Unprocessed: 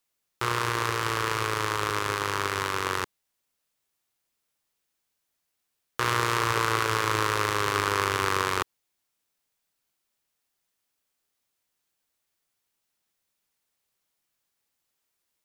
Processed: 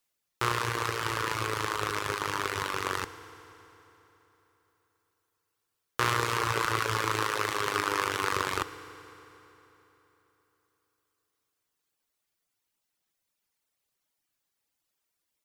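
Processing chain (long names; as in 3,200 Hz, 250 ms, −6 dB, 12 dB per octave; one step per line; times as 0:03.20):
reverb reduction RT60 1.2 s
0:07.07–0:08.32: high-pass filter 170 Hz 6 dB per octave
feedback delay network reverb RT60 3.6 s, high-frequency decay 0.8×, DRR 12 dB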